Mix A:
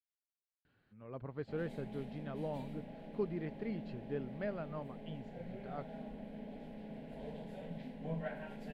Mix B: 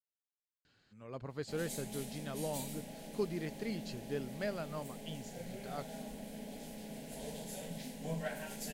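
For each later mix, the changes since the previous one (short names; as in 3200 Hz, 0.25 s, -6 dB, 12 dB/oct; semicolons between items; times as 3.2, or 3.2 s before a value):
master: remove air absorption 480 m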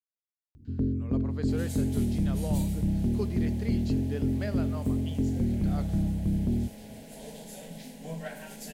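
first sound: unmuted; reverb: on, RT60 1.2 s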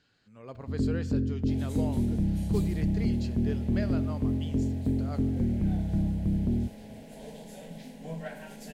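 speech: entry -0.65 s; second sound: add high shelf 4600 Hz -9.5 dB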